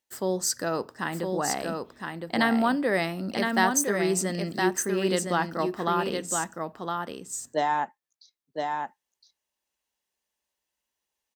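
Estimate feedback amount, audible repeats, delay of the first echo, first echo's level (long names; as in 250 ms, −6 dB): repeats not evenly spaced, 1, 1,013 ms, −4.5 dB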